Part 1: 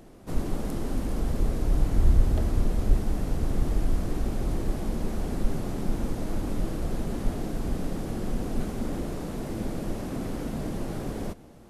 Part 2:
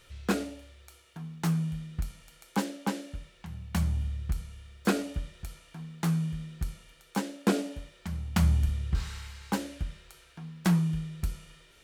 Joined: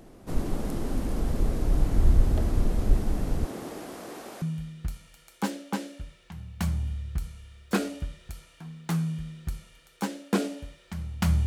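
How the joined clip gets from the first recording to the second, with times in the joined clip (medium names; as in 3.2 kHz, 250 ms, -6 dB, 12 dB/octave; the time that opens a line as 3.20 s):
part 1
3.44–4.42 s: high-pass 260 Hz -> 620 Hz
4.42 s: go over to part 2 from 1.56 s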